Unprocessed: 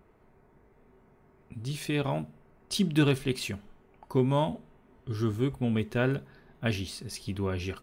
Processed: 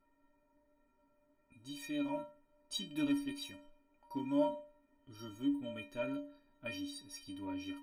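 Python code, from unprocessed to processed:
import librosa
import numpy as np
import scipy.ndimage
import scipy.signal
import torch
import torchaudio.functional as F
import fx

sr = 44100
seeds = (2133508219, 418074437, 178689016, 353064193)

y = fx.stiff_resonator(x, sr, f0_hz=280.0, decay_s=0.49, stiffness=0.03)
y = y * librosa.db_to_amplitude(7.0)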